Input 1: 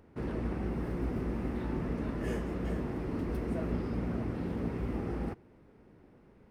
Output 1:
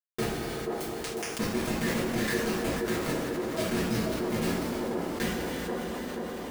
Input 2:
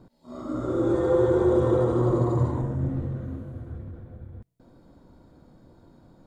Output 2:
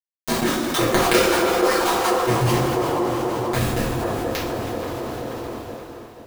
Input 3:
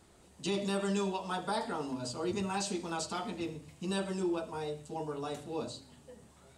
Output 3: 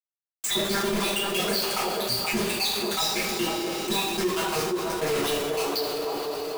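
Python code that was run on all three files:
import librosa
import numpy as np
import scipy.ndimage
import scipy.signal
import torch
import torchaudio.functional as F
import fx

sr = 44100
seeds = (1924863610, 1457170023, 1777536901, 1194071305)

p1 = fx.spec_dropout(x, sr, seeds[0], share_pct=81)
p2 = fx.weighting(p1, sr, curve='D')
p3 = fx.env_lowpass_down(p2, sr, base_hz=1700.0, full_db=-27.0)
p4 = fx.dynamic_eq(p3, sr, hz=430.0, q=3.2, threshold_db=-42.0, ratio=4.0, max_db=5)
p5 = fx.dmg_crackle(p4, sr, seeds[1], per_s=570.0, level_db=-49.0)
p6 = fx.quant_companded(p5, sr, bits=2)
p7 = p6 + fx.echo_wet_bandpass(p6, sr, ms=480, feedback_pct=37, hz=560.0, wet_db=-5.5, dry=0)
p8 = fx.rev_double_slope(p7, sr, seeds[2], early_s=0.35, late_s=3.5, knee_db=-18, drr_db=-9.0)
p9 = fx.env_flatten(p8, sr, amount_pct=70)
y = F.gain(torch.from_numpy(p9), -10.5).numpy()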